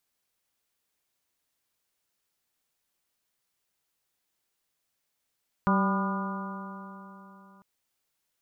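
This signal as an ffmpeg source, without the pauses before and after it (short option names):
-f lavfi -i "aevalsrc='0.0794*pow(10,-3*t/3.48)*sin(2*PI*192.26*t)+0.02*pow(10,-3*t/3.48)*sin(2*PI*386.07*t)+0.0224*pow(10,-3*t/3.48)*sin(2*PI*582.96*t)+0.02*pow(10,-3*t/3.48)*sin(2*PI*784.41*t)+0.0473*pow(10,-3*t/3.48)*sin(2*PI*991.87*t)+0.0398*pow(10,-3*t/3.48)*sin(2*PI*1206.69*t)+0.0224*pow(10,-3*t/3.48)*sin(2*PI*1430.14*t)':d=1.95:s=44100"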